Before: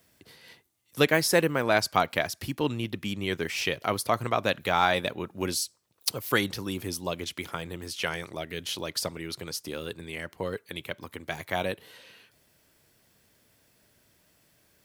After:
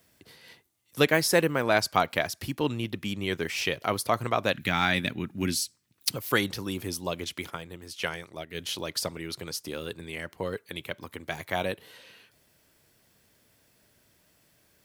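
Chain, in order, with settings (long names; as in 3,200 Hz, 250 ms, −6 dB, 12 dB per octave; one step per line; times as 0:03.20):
0:04.53–0:06.16: octave-band graphic EQ 125/250/500/1,000/2,000 Hz +5/+8/−10/−6/+5 dB
0:07.50–0:08.55: expander for the loud parts 1.5 to 1, over −42 dBFS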